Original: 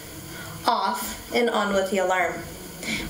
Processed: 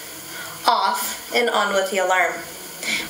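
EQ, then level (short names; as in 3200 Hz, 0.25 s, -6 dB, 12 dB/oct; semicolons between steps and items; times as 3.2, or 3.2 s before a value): low shelf 110 Hz -10 dB; low shelf 370 Hz -12 dB; +6.5 dB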